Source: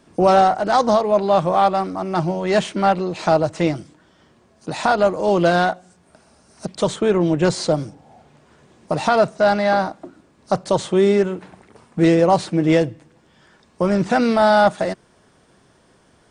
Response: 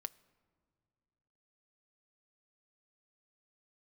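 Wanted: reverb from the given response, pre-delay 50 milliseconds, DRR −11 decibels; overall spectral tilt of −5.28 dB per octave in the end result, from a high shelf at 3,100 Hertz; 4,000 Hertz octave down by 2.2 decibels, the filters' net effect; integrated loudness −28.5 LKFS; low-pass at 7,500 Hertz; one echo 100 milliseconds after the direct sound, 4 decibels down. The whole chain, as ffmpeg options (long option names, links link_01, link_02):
-filter_complex "[0:a]lowpass=7500,highshelf=frequency=3100:gain=5.5,equalizer=frequency=4000:width_type=o:gain=-6.5,aecho=1:1:100:0.631,asplit=2[link_01][link_02];[1:a]atrim=start_sample=2205,adelay=50[link_03];[link_02][link_03]afir=irnorm=-1:irlink=0,volume=14dB[link_04];[link_01][link_04]amix=inputs=2:normalize=0,volume=-22.5dB"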